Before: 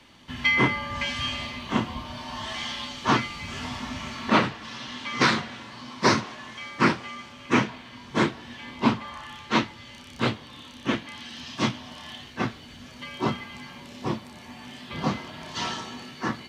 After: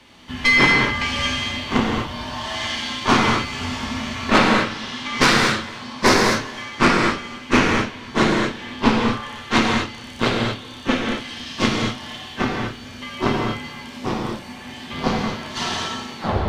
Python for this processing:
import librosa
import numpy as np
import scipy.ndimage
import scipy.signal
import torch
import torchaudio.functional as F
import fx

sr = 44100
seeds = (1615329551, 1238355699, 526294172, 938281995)

p1 = fx.tape_stop_end(x, sr, length_s=0.31)
p2 = fx.cheby_harmonics(p1, sr, harmonics=(4,), levels_db=(-12,), full_scale_db=-8.5)
p3 = p2 + fx.echo_single(p2, sr, ms=288, db=-22.5, dry=0)
p4 = fx.rev_gated(p3, sr, seeds[0], gate_ms=270, shape='flat', drr_db=-1.5)
y = F.gain(torch.from_numpy(p4), 3.0).numpy()